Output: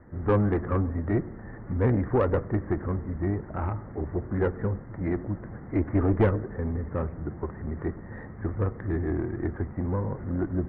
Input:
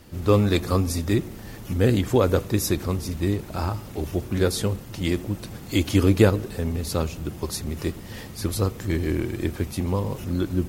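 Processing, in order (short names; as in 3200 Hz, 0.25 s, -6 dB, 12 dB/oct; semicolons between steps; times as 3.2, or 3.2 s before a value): steep low-pass 2000 Hz 96 dB/oct; tube stage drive 14 dB, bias 0.5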